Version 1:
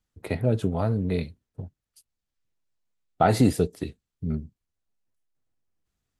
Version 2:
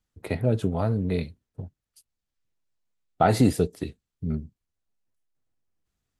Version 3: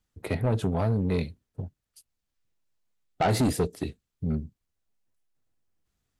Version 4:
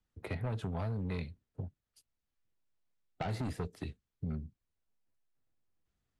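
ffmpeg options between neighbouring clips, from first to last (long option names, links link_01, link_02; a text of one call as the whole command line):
ffmpeg -i in.wav -af anull out.wav
ffmpeg -i in.wav -af "asoftclip=type=tanh:threshold=-21dB,volume=2dB" out.wav
ffmpeg -i in.wav -filter_complex "[0:a]acrossover=split=170|820|2400[link_01][link_02][link_03][link_04];[link_01]acompressor=threshold=-32dB:ratio=4[link_05];[link_02]acompressor=threshold=-40dB:ratio=4[link_06];[link_03]acompressor=threshold=-40dB:ratio=4[link_07];[link_04]acompressor=threshold=-44dB:ratio=4[link_08];[link_05][link_06][link_07][link_08]amix=inputs=4:normalize=0,lowpass=frequency=3500:poles=1,volume=-4dB" out.wav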